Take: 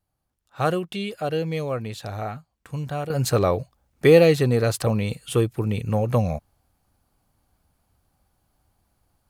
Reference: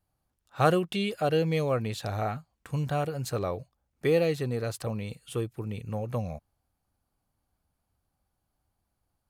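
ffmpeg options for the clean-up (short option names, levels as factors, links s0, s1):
-af "asetnsamples=n=441:p=0,asendcmd='3.1 volume volume -10.5dB',volume=1"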